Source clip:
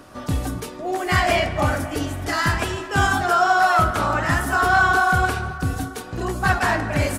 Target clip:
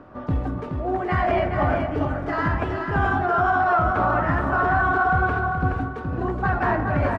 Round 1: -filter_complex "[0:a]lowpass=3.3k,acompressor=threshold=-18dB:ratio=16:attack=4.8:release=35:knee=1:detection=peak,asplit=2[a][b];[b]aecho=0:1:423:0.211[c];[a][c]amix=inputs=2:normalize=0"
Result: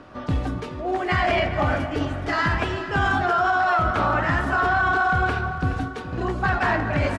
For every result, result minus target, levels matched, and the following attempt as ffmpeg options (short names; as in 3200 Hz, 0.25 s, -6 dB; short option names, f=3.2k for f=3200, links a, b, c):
4000 Hz band +10.5 dB; echo-to-direct -8 dB
-filter_complex "[0:a]lowpass=1.4k,acompressor=threshold=-18dB:ratio=16:attack=4.8:release=35:knee=1:detection=peak,asplit=2[a][b];[b]aecho=0:1:423:0.211[c];[a][c]amix=inputs=2:normalize=0"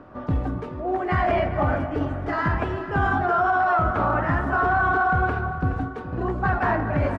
echo-to-direct -8 dB
-filter_complex "[0:a]lowpass=1.4k,acompressor=threshold=-18dB:ratio=16:attack=4.8:release=35:knee=1:detection=peak,asplit=2[a][b];[b]aecho=0:1:423:0.531[c];[a][c]amix=inputs=2:normalize=0"